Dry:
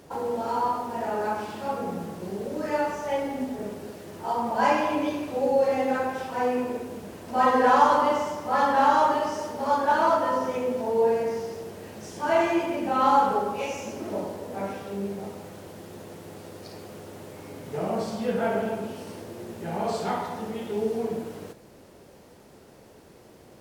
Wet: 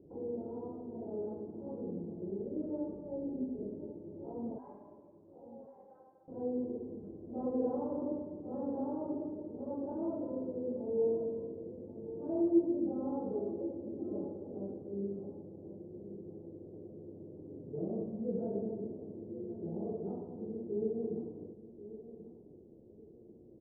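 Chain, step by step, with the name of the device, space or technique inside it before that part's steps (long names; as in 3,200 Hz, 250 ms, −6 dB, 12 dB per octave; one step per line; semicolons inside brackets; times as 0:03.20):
0:04.58–0:06.28: high-pass filter 930 Hz 24 dB per octave
under water (low-pass filter 470 Hz 24 dB per octave; parametric band 340 Hz +7 dB 0.38 octaves)
repeating echo 1,087 ms, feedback 29%, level −14 dB
level −7.5 dB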